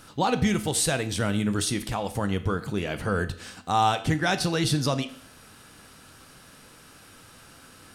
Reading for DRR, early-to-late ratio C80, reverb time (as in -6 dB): 9.0 dB, 17.0 dB, 0.65 s